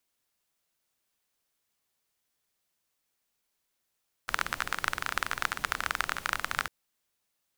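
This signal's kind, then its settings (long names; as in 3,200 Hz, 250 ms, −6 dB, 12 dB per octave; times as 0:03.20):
rain-like ticks over hiss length 2.40 s, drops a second 24, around 1,400 Hz, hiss −12 dB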